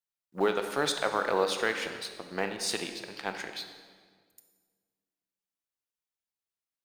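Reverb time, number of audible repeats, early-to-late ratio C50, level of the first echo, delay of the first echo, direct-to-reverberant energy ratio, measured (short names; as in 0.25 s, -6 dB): 1.7 s, none, 7.5 dB, none, none, 6.5 dB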